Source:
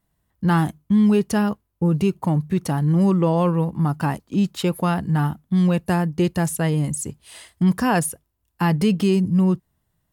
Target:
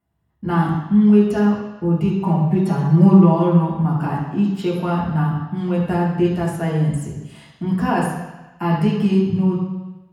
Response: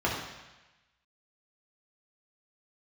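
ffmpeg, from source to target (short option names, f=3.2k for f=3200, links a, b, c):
-filter_complex "[0:a]asettb=1/sr,asplit=3[a][b][c];[a]atrim=end=2.164[d];[b]atrim=start=2.16:end=3.72,asetpts=PTS-STARTPTS,afade=t=in:d=0.004:c=qsin,afade=t=out:st=1.556:d=0.004:c=qsin,aecho=1:1:5.1:0.98,atrim=end_sample=68796[e];[c]atrim=start=3.716[f];[d][e]acrossfade=d=0.004:c1=hsin:c2=qsin[g];[g][f]acrossfade=d=0.004:c1=qsin:c2=hsin[h];[1:a]atrim=start_sample=2205[i];[h][i]afir=irnorm=-1:irlink=0,volume=-12dB"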